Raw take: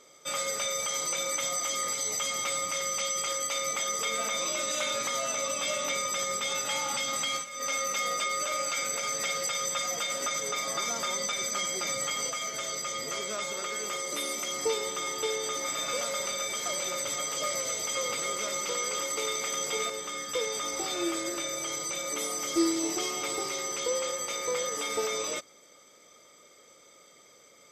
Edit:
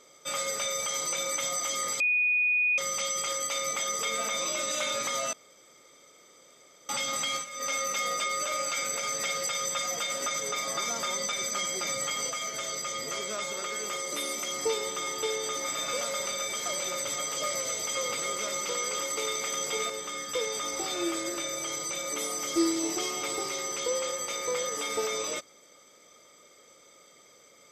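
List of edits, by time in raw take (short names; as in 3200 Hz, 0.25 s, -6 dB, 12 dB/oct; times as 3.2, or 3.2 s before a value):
2–2.78 bleep 2470 Hz -22 dBFS
5.33–6.89 room tone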